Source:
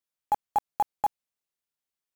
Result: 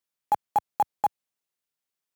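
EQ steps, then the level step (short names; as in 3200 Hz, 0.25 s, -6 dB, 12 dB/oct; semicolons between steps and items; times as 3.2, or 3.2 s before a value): HPF 85 Hz 12 dB/oct; +2.0 dB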